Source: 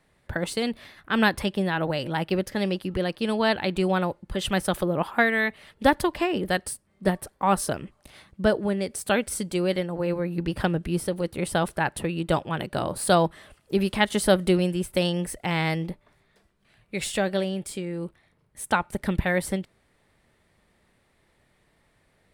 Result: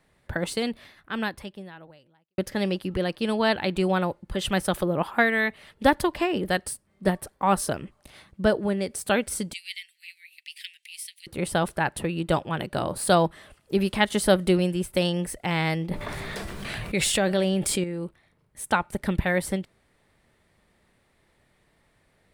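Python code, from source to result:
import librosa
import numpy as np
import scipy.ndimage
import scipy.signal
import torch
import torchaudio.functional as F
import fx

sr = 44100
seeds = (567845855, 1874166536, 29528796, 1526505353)

y = fx.steep_highpass(x, sr, hz=2000.0, slope=72, at=(9.53, 11.27))
y = fx.env_flatten(y, sr, amount_pct=70, at=(15.91, 17.84))
y = fx.edit(y, sr, fx.fade_out_span(start_s=0.56, length_s=1.82, curve='qua'), tone=tone)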